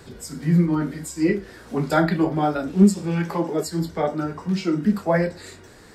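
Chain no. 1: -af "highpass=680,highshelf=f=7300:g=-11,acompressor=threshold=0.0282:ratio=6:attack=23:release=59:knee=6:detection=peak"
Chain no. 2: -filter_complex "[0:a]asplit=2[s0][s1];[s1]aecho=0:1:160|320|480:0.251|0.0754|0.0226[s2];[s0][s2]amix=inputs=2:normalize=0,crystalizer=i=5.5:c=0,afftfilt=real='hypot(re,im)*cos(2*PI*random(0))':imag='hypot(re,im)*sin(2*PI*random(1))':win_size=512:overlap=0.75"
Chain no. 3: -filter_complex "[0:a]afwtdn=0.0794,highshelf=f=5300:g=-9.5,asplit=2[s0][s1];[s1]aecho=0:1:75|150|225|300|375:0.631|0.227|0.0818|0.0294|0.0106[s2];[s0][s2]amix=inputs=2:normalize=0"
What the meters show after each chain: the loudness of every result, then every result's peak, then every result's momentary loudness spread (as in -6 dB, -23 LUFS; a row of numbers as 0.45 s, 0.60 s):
-35.5 LUFS, -26.5 LUFS, -21.0 LUFS; -17.5 dBFS, -6.0 dBFS, -4.0 dBFS; 8 LU, 11 LU, 10 LU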